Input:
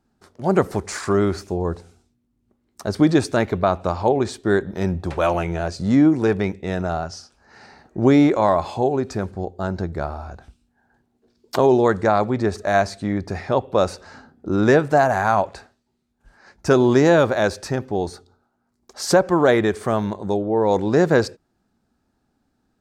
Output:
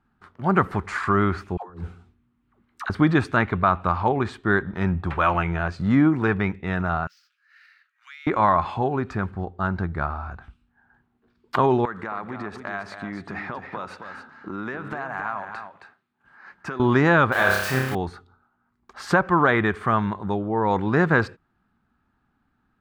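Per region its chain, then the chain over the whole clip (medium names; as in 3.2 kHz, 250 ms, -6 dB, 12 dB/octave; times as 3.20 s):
1.57–2.90 s: bass shelf 180 Hz -6.5 dB + phase dispersion lows, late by 125 ms, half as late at 420 Hz + compressor with a negative ratio -32 dBFS, ratio -0.5
7.07–8.27 s: median filter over 5 samples + Bessel high-pass 2.8 kHz, order 8 + compression 2:1, threshold -47 dBFS
11.85–16.80 s: high-pass 190 Hz + compression 8:1, threshold -26 dBFS + delay 269 ms -8 dB
17.32–17.95 s: zero-crossing glitches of -16.5 dBFS + tone controls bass -5 dB, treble +1 dB + flutter echo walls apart 5.2 m, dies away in 0.71 s
whole clip: FFT filter 170 Hz 0 dB, 570 Hz -9 dB, 1.2 kHz +7 dB, 3.1 kHz -1 dB, 5.6 kHz -16 dB; loudness maximiser +6.5 dB; trim -6 dB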